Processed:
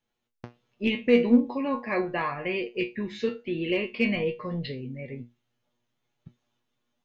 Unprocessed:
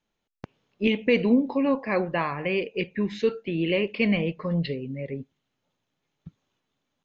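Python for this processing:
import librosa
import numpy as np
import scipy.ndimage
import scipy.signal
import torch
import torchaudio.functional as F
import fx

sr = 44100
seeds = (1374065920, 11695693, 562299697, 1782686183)

p1 = fx.comb_fb(x, sr, f0_hz=120.0, decay_s=0.22, harmonics='all', damping=0.0, mix_pct=90)
p2 = np.clip(p1, -10.0 ** (-24.5 / 20.0), 10.0 ** (-24.5 / 20.0))
p3 = p1 + F.gain(torch.from_numpy(p2), -12.0).numpy()
y = F.gain(torch.from_numpy(p3), 4.5).numpy()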